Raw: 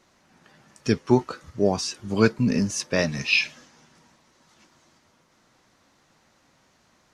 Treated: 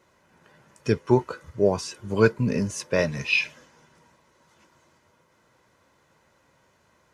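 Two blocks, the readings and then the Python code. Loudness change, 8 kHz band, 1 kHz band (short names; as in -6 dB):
-1.0 dB, -5.0 dB, -0.5 dB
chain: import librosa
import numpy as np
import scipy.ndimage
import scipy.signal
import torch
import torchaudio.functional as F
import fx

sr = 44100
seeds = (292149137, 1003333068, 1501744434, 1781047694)

y = scipy.signal.sosfilt(scipy.signal.butter(2, 51.0, 'highpass', fs=sr, output='sos'), x)
y = fx.peak_eq(y, sr, hz=4800.0, db=-7.5, octaves=1.4)
y = y + 0.41 * np.pad(y, (int(2.0 * sr / 1000.0), 0))[:len(y)]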